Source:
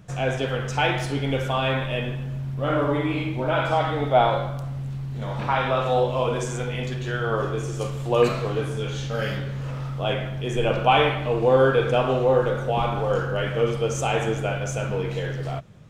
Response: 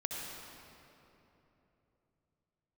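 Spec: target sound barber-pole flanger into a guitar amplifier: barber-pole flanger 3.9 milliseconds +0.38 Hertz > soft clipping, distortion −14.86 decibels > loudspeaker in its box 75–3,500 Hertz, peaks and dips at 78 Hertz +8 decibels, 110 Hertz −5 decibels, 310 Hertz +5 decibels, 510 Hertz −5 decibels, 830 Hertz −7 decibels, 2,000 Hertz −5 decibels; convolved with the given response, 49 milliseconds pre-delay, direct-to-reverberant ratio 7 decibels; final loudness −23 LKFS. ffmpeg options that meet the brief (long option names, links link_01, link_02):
-filter_complex "[0:a]asplit=2[link_01][link_02];[1:a]atrim=start_sample=2205,adelay=49[link_03];[link_02][link_03]afir=irnorm=-1:irlink=0,volume=-9.5dB[link_04];[link_01][link_04]amix=inputs=2:normalize=0,asplit=2[link_05][link_06];[link_06]adelay=3.9,afreqshift=0.38[link_07];[link_05][link_07]amix=inputs=2:normalize=1,asoftclip=threshold=-18dB,highpass=75,equalizer=frequency=78:width_type=q:width=4:gain=8,equalizer=frequency=110:width_type=q:width=4:gain=-5,equalizer=frequency=310:width_type=q:width=4:gain=5,equalizer=frequency=510:width_type=q:width=4:gain=-5,equalizer=frequency=830:width_type=q:width=4:gain=-7,equalizer=frequency=2000:width_type=q:width=4:gain=-5,lowpass=frequency=3500:width=0.5412,lowpass=frequency=3500:width=1.3066,volume=7dB"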